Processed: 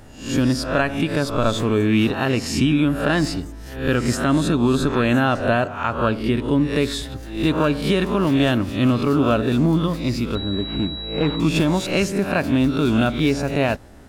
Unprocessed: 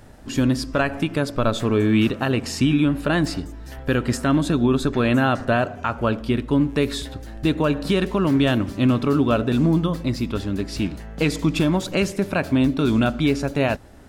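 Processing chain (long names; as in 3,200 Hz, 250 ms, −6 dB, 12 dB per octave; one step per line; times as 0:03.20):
peak hold with a rise ahead of every peak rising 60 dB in 0.48 s
0:10.35–0:11.40: switching amplifier with a slow clock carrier 3,900 Hz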